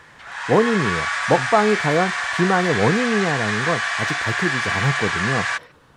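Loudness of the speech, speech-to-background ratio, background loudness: -22.0 LUFS, 0.5 dB, -22.5 LUFS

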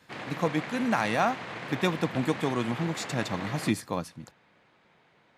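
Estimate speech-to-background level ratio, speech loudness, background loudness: 8.5 dB, -29.5 LUFS, -38.0 LUFS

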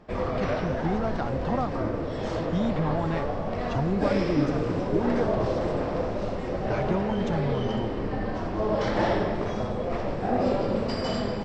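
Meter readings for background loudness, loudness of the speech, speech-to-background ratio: -28.5 LUFS, -31.0 LUFS, -2.5 dB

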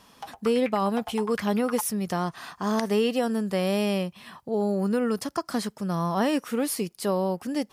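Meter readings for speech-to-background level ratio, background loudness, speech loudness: 12.5 dB, -39.5 LUFS, -27.0 LUFS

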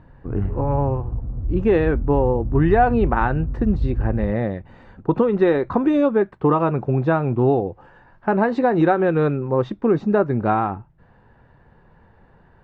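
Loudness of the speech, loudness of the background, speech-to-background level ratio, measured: -20.5 LUFS, -28.0 LUFS, 7.5 dB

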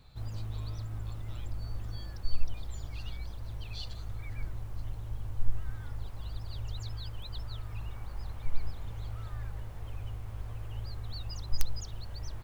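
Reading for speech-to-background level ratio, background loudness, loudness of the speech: -12.0 dB, -41.5 LUFS, -53.5 LUFS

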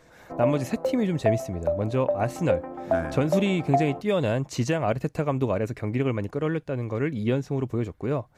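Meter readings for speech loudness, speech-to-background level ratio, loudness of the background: -27.0 LUFS, 2.5 dB, -29.5 LUFS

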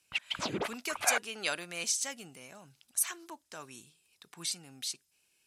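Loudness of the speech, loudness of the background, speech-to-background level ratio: -34.5 LUFS, -35.0 LUFS, 0.5 dB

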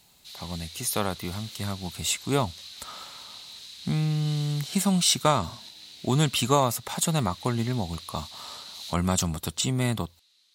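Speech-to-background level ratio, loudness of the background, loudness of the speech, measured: 14.5 dB, -41.5 LUFS, -27.0 LUFS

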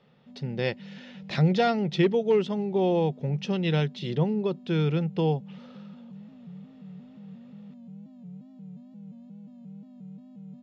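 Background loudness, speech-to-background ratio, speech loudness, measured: -46.0 LUFS, 19.5 dB, -26.5 LUFS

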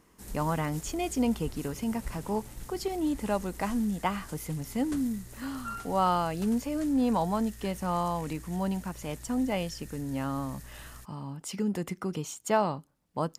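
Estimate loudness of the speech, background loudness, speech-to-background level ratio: -31.5 LUFS, -45.5 LUFS, 14.0 dB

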